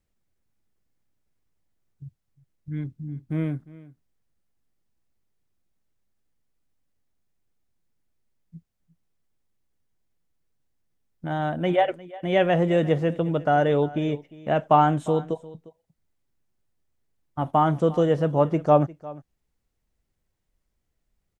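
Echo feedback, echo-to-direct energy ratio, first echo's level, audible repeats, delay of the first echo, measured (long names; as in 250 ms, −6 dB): repeats not evenly spaced, −19.5 dB, −19.5 dB, 1, 353 ms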